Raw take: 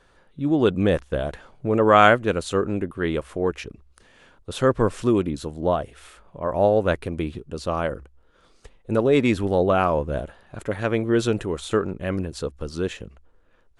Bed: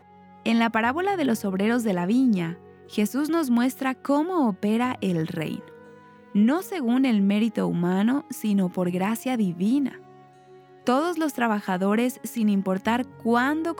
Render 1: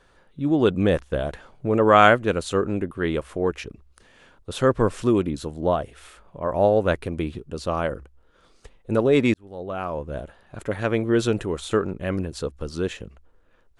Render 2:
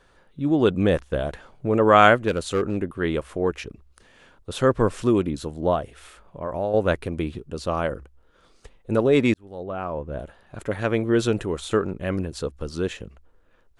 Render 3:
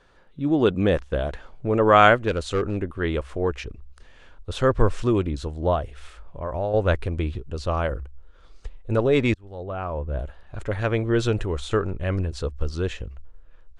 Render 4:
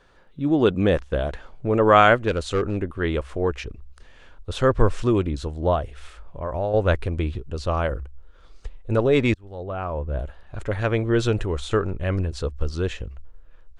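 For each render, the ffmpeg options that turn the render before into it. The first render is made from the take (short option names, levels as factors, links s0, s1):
-filter_complex "[0:a]asplit=2[s0][s1];[s0]atrim=end=9.34,asetpts=PTS-STARTPTS,afade=t=out:st=9.336:d=0.004:c=hsin[s2];[s1]atrim=start=9.34,asetpts=PTS-STARTPTS,afade=t=in:d=1.4[s3];[s2][s3]concat=n=2:v=0:a=1"
-filter_complex "[0:a]asettb=1/sr,asplit=3[s0][s1][s2];[s0]atrim=end=2.284[s3];[s1]atrim=start=2.28:end=2.77,asetpts=PTS-STARTPTS,afade=t=in:d=0.004:c=qsin,afade=t=out:st=0.486:d=0.004:c=qsin,volume=6.31,asoftclip=hard,volume=0.158[s4];[s2]atrim=start=2.766[s5];[s3][s4]acrossfade=d=0.004:c1=hsin:c2=qsin[s6];[s6][s5]acrossfade=d=0.004:c1=qsin:c2=hsin,asettb=1/sr,asplit=3[s7][s8][s9];[s7]atrim=end=5.794[s10];[s8]atrim=start=5.79:end=6.74,asetpts=PTS-STARTPTS,afade=t=in:d=0.004:c=qsin,afade=t=out:st=0.946:d=0.004:c=qsin,acompressor=threshold=0.0447:ratio=2:attack=3.2:release=140:knee=1:detection=peak[s11];[s9]atrim=start=6.736[s12];[s10][s11]acrossfade=d=0.004:c1=hsin:c2=qsin[s13];[s13][s12]acrossfade=d=0.004:c1=qsin:c2=hsin,asettb=1/sr,asplit=3[s14][s15][s16];[s14]atrim=end=9.634[s17];[s15]atrim=start=9.63:end=10.2,asetpts=PTS-STARTPTS,afade=t=in:d=0.004:c=qsin,afade=t=out:st=0.566:d=0.004:c=qsin,highshelf=f=3300:g=-11[s18];[s16]atrim=start=10.196[s19];[s17][s18]acrossfade=d=0.004:c1=hsin:c2=qsin[s20];[s20][s19]acrossfade=d=0.004:c1=qsin:c2=hsin"
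-af "lowpass=6900,asubboost=boost=6:cutoff=75"
-af "volume=1.12,alimiter=limit=0.708:level=0:latency=1"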